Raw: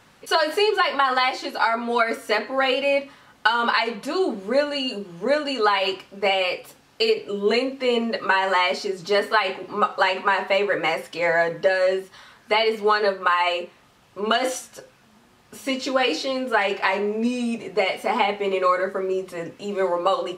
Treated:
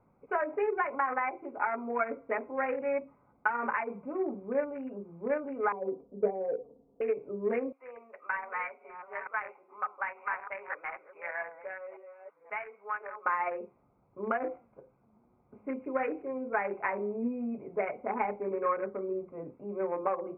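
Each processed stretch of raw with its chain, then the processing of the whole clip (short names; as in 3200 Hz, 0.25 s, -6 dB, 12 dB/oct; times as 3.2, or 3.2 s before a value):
5.72–7.01 synth low-pass 480 Hz, resonance Q 2.3 + comb 4.3 ms, depth 61%
7.72–13.26 reverse delay 0.531 s, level -6.5 dB + HPF 1200 Hz
whole clip: Wiener smoothing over 25 samples; steep low-pass 2400 Hz 96 dB/oct; gain -9 dB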